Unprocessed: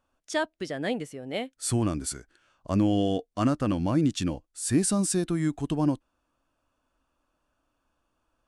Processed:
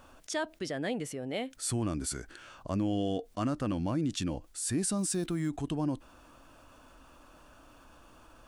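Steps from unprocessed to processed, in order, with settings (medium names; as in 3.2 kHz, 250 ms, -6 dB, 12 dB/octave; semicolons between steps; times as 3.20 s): 4.98–5.51 s: block-companded coder 7-bit; level flattener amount 50%; trim -9 dB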